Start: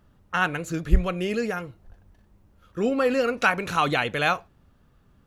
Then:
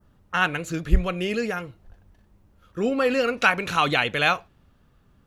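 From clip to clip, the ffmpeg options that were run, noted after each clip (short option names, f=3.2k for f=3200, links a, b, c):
-af "adynamicequalizer=threshold=0.0141:dfrequency=3000:dqfactor=0.92:tfrequency=3000:tqfactor=0.92:attack=5:release=100:ratio=0.375:range=2.5:mode=boostabove:tftype=bell"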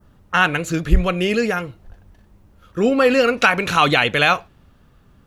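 -af "alimiter=level_in=8dB:limit=-1dB:release=50:level=0:latency=1,volume=-1dB"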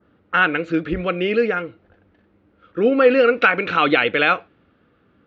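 -af "highpass=120,equalizer=f=140:t=q:w=4:g=-6,equalizer=f=310:t=q:w=4:g=8,equalizer=f=480:t=q:w=4:g=7,equalizer=f=970:t=q:w=4:g=-4,equalizer=f=1.4k:t=q:w=4:g=6,equalizer=f=2.2k:t=q:w=4:g=4,lowpass=f=3.7k:w=0.5412,lowpass=f=3.7k:w=1.3066,volume=-4dB"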